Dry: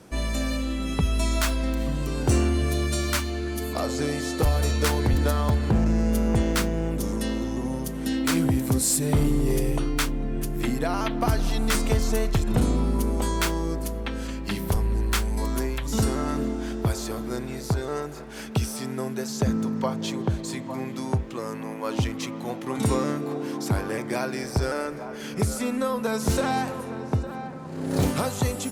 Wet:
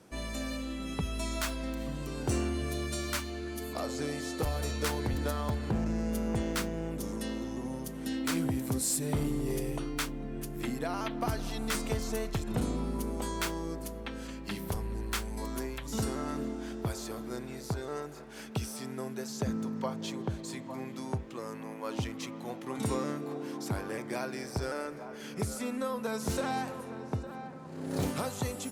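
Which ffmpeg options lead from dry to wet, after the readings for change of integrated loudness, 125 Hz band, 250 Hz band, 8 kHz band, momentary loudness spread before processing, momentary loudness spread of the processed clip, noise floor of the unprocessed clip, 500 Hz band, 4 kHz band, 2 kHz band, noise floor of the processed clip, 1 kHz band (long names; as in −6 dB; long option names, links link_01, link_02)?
−9.0 dB, −10.5 dB, −8.0 dB, −7.5 dB, 8 LU, 8 LU, −36 dBFS, −7.5 dB, −7.5 dB, −7.5 dB, −44 dBFS, −7.5 dB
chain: -af "lowshelf=frequency=71:gain=-8.5,volume=-7.5dB"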